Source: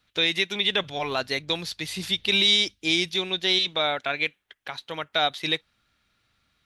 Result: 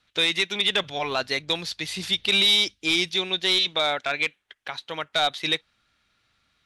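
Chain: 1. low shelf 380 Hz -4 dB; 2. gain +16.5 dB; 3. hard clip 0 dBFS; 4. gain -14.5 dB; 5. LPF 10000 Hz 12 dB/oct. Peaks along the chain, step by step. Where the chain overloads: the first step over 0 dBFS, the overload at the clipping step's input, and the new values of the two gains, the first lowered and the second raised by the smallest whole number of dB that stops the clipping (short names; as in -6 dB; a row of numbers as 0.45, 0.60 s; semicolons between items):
-9.5, +7.0, 0.0, -14.5, -13.5 dBFS; step 2, 7.0 dB; step 2 +9.5 dB, step 4 -7.5 dB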